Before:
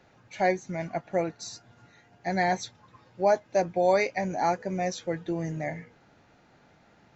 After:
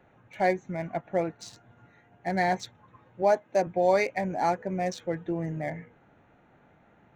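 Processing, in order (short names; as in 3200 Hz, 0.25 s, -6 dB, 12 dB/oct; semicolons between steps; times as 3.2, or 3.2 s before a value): Wiener smoothing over 9 samples; 3.22–3.67 HPF 150 Hz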